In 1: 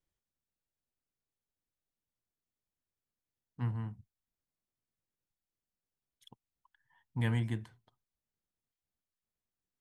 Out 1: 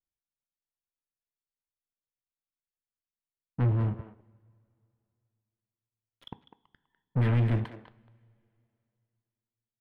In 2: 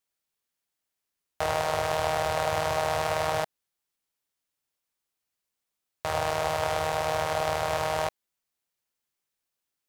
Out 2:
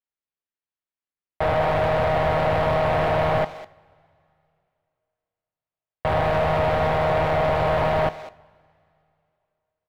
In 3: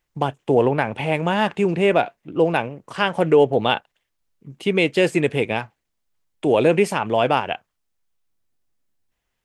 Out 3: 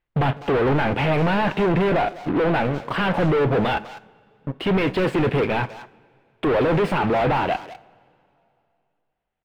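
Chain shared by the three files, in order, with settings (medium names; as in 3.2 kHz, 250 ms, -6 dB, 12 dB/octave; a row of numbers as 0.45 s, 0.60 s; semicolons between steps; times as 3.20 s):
treble shelf 3.1 kHz +10.5 dB; gain riding 2 s; waveshaping leveller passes 5; saturation -19 dBFS; distance through air 490 m; speakerphone echo 200 ms, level -11 dB; two-slope reverb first 0.41 s, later 2.7 s, from -18 dB, DRR 15 dB; trim +2.5 dB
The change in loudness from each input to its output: +8.0 LU, +6.5 LU, -1.0 LU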